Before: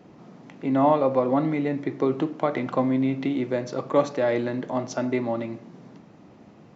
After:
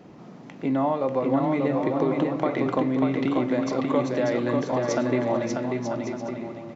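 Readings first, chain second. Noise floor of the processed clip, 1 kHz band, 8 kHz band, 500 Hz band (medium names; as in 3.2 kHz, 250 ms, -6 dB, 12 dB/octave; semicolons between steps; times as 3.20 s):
-44 dBFS, -1.0 dB, no reading, 0.0 dB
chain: compression 4:1, threshold -24 dBFS, peak gain reduction 9 dB; bouncing-ball echo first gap 590 ms, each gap 0.6×, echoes 5; trim +2.5 dB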